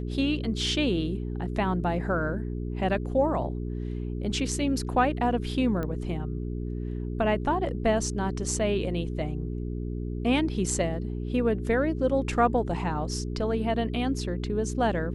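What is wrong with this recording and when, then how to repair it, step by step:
mains hum 60 Hz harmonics 7 −32 dBFS
0:05.83: click −20 dBFS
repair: click removal
hum removal 60 Hz, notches 7

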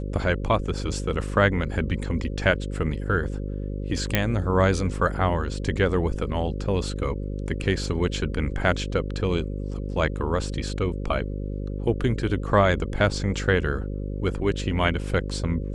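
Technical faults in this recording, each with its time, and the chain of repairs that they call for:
mains buzz 50 Hz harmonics 11 −30 dBFS
0:04.15: click −5 dBFS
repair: click removal
hum removal 50 Hz, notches 11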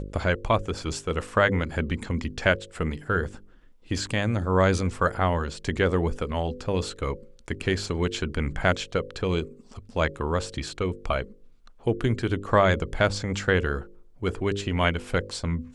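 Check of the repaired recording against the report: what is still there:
none of them is left

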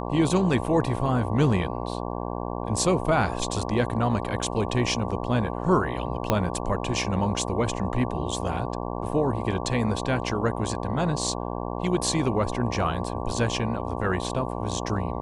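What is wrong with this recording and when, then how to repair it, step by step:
mains buzz 60 Hz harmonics 19 −31 dBFS
0:06.30: click −7 dBFS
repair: click removal
hum removal 60 Hz, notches 19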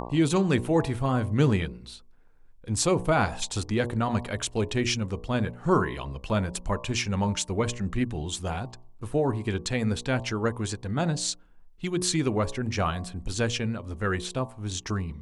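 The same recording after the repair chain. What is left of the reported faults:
0:06.30: click

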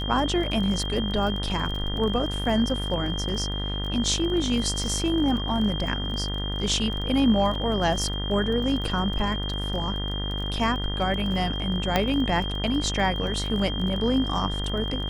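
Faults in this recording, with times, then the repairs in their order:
mains buzz 50 Hz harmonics 40 −30 dBFS
surface crackle 22 per second −31 dBFS
whistle 3,200 Hz −32 dBFS
0:07.55: drop-out 3.1 ms
0:11.96: click −7 dBFS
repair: click removal
notch filter 3,200 Hz, Q 30
hum removal 50 Hz, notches 40
repair the gap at 0:07.55, 3.1 ms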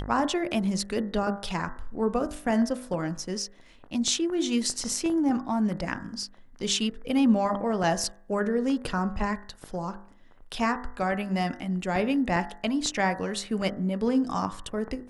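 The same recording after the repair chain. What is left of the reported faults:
none of them is left

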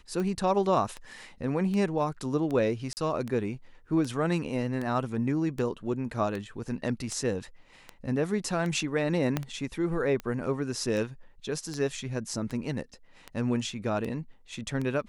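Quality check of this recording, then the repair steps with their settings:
scratch tick 78 rpm −22 dBFS
0:02.93–0:02.97: drop-out 39 ms
0:09.37: click −13 dBFS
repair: click removal
repair the gap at 0:02.93, 39 ms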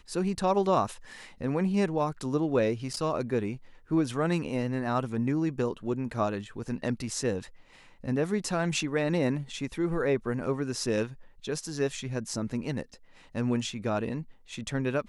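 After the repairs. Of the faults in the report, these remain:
0:09.37: click

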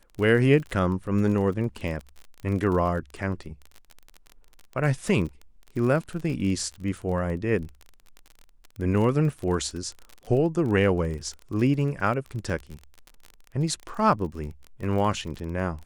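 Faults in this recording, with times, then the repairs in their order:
surface crackle 31 per second −32 dBFS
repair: click removal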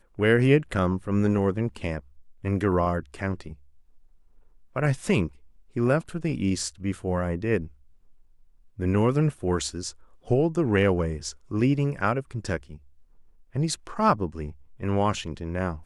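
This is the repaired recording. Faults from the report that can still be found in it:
none of them is left

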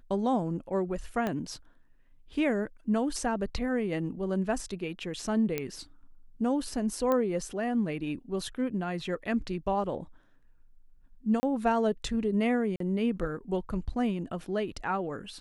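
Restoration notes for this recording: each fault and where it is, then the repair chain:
0:01.27: click −18 dBFS
0:05.58: click −16 dBFS
0:07.12: click −16 dBFS
0:11.40–0:11.43: drop-out 30 ms
0:12.76–0:12.80: drop-out 43 ms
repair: click removal
repair the gap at 0:11.40, 30 ms
repair the gap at 0:12.76, 43 ms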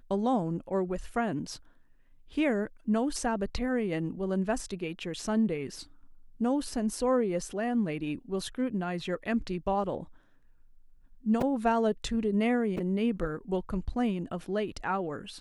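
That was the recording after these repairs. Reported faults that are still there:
0:01.27: click

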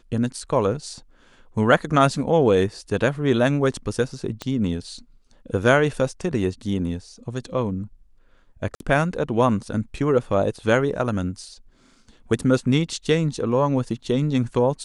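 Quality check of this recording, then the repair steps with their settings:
0:04.42: click −15 dBFS
0:08.75–0:08.80: drop-out 52 ms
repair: click removal
repair the gap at 0:08.75, 52 ms

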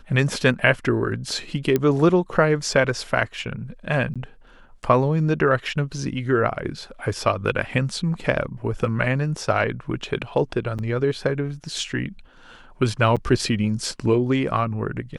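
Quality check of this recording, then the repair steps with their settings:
0:01.76: click −8 dBFS
0:04.14–0:04.16: drop-out 16 ms
0:10.78–0:10.79: drop-out 8 ms
0:13.16–0:13.17: drop-out 6.7 ms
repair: click removal
repair the gap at 0:04.14, 16 ms
repair the gap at 0:10.78, 8 ms
repair the gap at 0:13.16, 6.7 ms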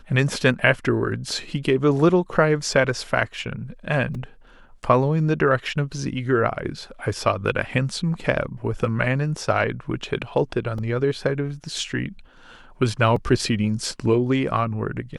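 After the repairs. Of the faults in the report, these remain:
none of them is left

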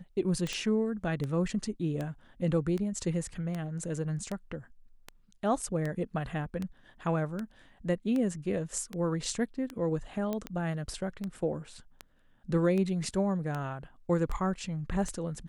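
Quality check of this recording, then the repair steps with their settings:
scratch tick 78 rpm −22 dBFS
0:00.53: click −21 dBFS
0:10.33: click −20 dBFS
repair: click removal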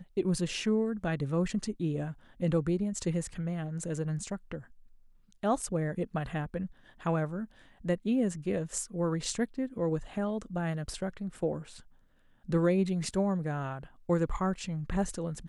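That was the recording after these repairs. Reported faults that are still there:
0:00.53: click

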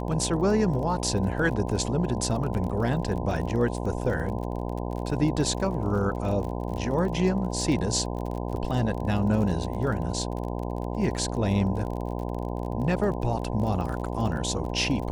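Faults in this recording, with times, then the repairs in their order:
mains buzz 60 Hz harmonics 17 −31 dBFS
surface crackle 32 per second −33 dBFS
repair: click removal
hum removal 60 Hz, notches 17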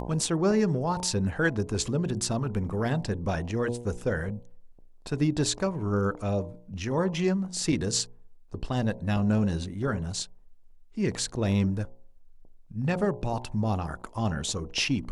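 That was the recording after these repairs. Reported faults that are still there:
none of them is left

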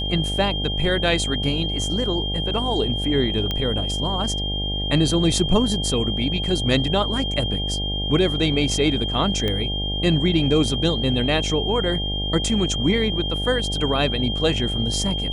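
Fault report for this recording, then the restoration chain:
mains buzz 50 Hz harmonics 17 −27 dBFS
whistle 3,200 Hz −26 dBFS
0:03.51: click −11 dBFS
0:09.48: click −12 dBFS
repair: click removal
hum removal 50 Hz, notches 17
notch filter 3,200 Hz, Q 30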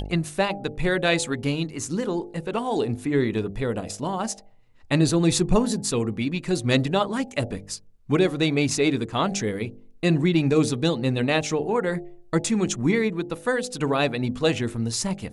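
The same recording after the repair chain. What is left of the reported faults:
0:03.51: click

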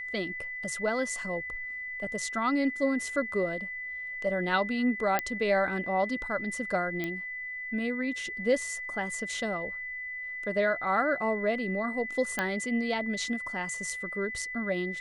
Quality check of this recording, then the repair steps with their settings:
whistle 2,000 Hz −35 dBFS
0:05.19: click −11 dBFS
0:07.04: click −19 dBFS
0:12.39: click −14 dBFS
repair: click removal
notch filter 2,000 Hz, Q 30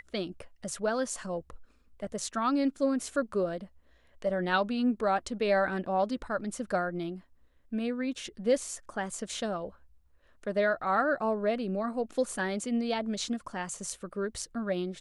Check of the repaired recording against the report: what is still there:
0:05.19: click
0:07.04: click

